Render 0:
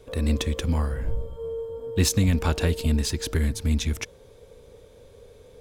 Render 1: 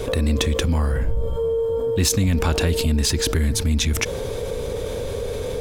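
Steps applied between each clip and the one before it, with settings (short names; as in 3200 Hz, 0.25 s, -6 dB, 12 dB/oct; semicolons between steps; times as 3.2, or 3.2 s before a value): fast leveller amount 70%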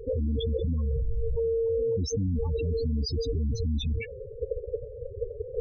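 level quantiser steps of 13 dB; loudest bins only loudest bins 8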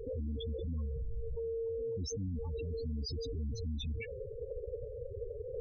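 limiter -30 dBFS, peak gain reduction 10.5 dB; gain -2.5 dB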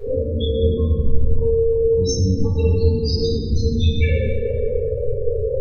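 reverb RT60 2.1 s, pre-delay 4 ms, DRR -11.5 dB; gain +6.5 dB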